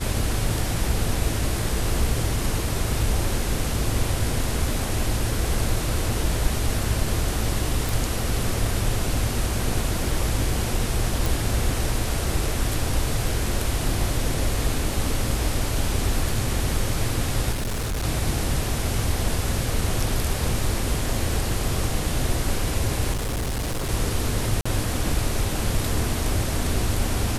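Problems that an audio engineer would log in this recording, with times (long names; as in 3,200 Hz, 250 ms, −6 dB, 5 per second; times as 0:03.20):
0:07.89: click
0:11.26: click
0:17.52–0:18.05: clipping −23 dBFS
0:23.12–0:23.90: clipping −23 dBFS
0:24.61–0:24.66: drop-out 45 ms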